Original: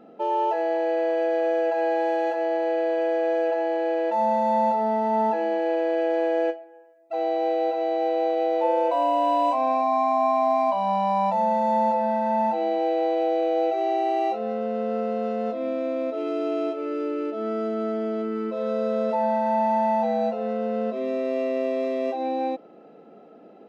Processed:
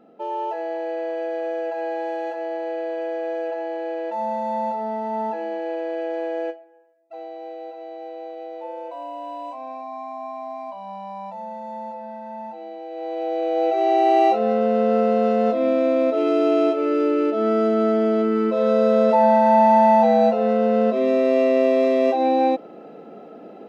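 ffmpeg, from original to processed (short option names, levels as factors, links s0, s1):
-af "volume=6.31,afade=t=out:st=6.52:d=0.77:silence=0.398107,afade=t=in:st=12.89:d=0.64:silence=0.237137,afade=t=in:st=13.53:d=0.64:silence=0.446684"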